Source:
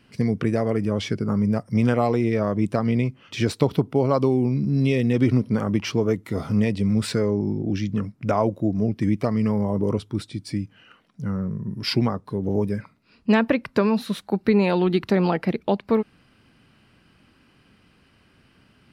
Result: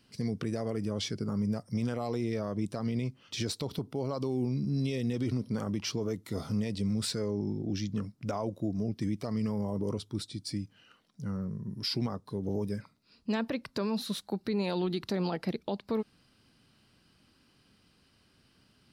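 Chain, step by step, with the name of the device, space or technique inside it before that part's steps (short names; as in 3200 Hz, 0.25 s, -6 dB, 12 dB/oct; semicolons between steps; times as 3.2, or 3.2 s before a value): over-bright horn tweeter (resonant high shelf 3200 Hz +7 dB, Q 1.5; limiter -14.5 dBFS, peak gain reduction 10 dB); gain -8.5 dB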